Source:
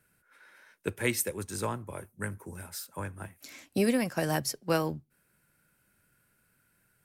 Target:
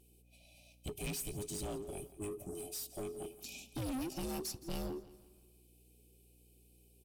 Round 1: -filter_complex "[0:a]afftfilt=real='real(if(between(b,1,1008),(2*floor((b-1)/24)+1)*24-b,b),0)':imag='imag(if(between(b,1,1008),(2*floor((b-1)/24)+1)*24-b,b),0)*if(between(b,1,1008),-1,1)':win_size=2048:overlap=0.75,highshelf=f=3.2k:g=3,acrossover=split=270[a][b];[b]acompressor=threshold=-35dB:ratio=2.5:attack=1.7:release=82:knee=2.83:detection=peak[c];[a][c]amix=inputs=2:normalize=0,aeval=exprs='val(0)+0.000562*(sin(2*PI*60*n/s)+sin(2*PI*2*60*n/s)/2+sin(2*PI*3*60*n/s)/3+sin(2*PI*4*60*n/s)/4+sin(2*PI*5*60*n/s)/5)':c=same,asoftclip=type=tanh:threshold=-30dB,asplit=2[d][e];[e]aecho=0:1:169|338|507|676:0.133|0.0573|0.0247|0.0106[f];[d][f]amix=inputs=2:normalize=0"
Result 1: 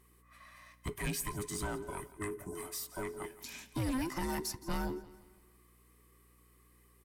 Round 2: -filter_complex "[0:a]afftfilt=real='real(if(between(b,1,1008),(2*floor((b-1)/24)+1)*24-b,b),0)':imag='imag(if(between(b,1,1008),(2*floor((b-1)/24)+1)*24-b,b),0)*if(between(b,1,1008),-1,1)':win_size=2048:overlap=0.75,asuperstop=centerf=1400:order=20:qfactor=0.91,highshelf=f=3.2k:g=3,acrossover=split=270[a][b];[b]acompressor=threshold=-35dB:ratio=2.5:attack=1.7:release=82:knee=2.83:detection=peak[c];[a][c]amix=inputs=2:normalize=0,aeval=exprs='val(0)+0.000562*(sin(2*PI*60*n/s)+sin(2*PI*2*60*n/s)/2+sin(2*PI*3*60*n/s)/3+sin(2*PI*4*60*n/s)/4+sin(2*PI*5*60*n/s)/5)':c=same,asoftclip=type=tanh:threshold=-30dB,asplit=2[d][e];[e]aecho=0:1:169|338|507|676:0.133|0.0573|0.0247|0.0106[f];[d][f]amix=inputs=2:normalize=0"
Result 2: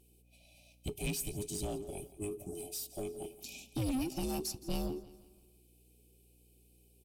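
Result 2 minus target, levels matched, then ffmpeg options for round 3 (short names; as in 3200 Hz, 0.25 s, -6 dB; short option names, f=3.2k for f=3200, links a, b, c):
soft clip: distortion -4 dB
-filter_complex "[0:a]afftfilt=real='real(if(between(b,1,1008),(2*floor((b-1)/24)+1)*24-b,b),0)':imag='imag(if(between(b,1,1008),(2*floor((b-1)/24)+1)*24-b,b),0)*if(between(b,1,1008),-1,1)':win_size=2048:overlap=0.75,asuperstop=centerf=1400:order=20:qfactor=0.91,highshelf=f=3.2k:g=3,acrossover=split=270[a][b];[b]acompressor=threshold=-35dB:ratio=2.5:attack=1.7:release=82:knee=2.83:detection=peak[c];[a][c]amix=inputs=2:normalize=0,aeval=exprs='val(0)+0.000562*(sin(2*PI*60*n/s)+sin(2*PI*2*60*n/s)/2+sin(2*PI*3*60*n/s)/3+sin(2*PI*4*60*n/s)/4+sin(2*PI*5*60*n/s)/5)':c=same,asoftclip=type=tanh:threshold=-36.5dB,asplit=2[d][e];[e]aecho=0:1:169|338|507|676:0.133|0.0573|0.0247|0.0106[f];[d][f]amix=inputs=2:normalize=0"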